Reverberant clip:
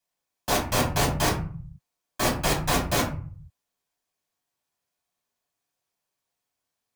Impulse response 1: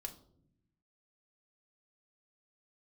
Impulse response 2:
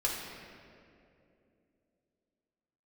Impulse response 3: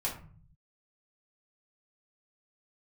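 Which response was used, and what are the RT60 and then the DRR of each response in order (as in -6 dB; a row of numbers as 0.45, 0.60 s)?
3; not exponential, 2.7 s, 0.45 s; 2.5, -4.5, -5.0 dB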